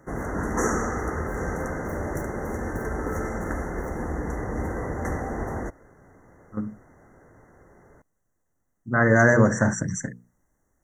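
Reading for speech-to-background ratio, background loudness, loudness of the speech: 9.5 dB, -30.0 LUFS, -20.5 LUFS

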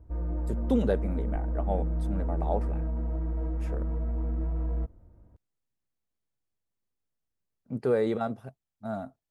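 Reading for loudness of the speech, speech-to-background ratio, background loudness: -32.0 LUFS, 0.5 dB, -32.5 LUFS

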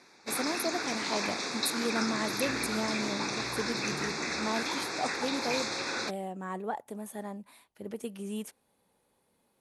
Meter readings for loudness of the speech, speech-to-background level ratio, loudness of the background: -36.5 LUFS, -4.0 dB, -32.5 LUFS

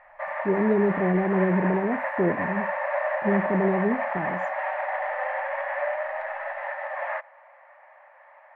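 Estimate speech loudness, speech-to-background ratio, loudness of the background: -26.0 LUFS, 3.5 dB, -29.5 LUFS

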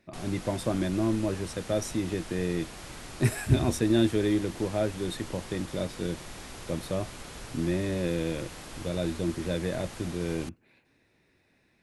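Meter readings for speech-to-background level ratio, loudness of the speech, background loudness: 12.5 dB, -30.5 LUFS, -43.0 LUFS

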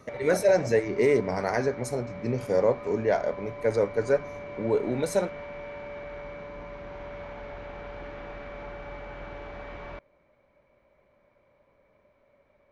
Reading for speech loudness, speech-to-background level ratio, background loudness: -26.5 LUFS, 14.0 dB, -40.5 LUFS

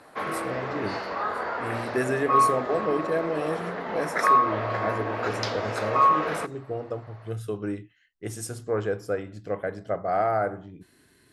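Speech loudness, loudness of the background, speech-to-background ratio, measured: -31.0 LUFS, -26.5 LUFS, -4.5 dB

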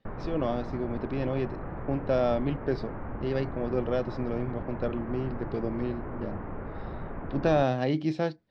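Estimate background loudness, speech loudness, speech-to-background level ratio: -39.0 LUFS, -31.0 LUFS, 8.0 dB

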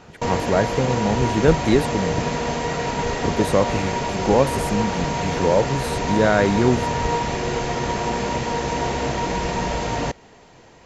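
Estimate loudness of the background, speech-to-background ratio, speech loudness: -24.0 LUFS, 2.0 dB, -22.0 LUFS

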